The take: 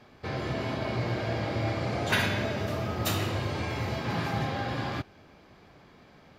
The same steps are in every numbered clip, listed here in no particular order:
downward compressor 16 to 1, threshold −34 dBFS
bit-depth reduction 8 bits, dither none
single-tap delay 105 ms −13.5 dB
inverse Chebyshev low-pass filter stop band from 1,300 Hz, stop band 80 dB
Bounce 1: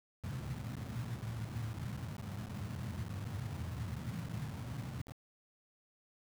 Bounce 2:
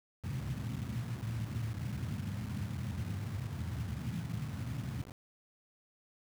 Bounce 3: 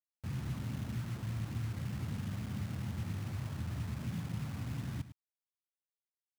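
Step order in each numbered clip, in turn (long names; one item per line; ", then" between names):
single-tap delay, then downward compressor, then inverse Chebyshev low-pass filter, then bit-depth reduction
inverse Chebyshev low-pass filter, then downward compressor, then single-tap delay, then bit-depth reduction
inverse Chebyshev low-pass filter, then downward compressor, then bit-depth reduction, then single-tap delay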